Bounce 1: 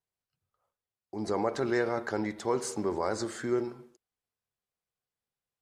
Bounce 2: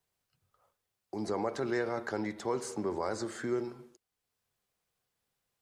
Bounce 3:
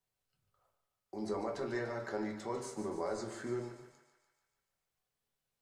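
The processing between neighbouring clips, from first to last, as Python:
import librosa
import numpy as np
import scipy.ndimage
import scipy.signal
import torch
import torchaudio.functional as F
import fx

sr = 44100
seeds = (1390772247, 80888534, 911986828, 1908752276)

y1 = fx.band_squash(x, sr, depth_pct=40)
y1 = y1 * 10.0 ** (-3.5 / 20.0)
y2 = fx.comb_fb(y1, sr, f0_hz=140.0, decay_s=1.3, harmonics='all', damping=0.0, mix_pct=60)
y2 = fx.echo_thinned(y2, sr, ms=146, feedback_pct=61, hz=540.0, wet_db=-10.0)
y2 = fx.room_shoebox(y2, sr, seeds[0], volume_m3=120.0, walls='furnished', distance_m=1.1)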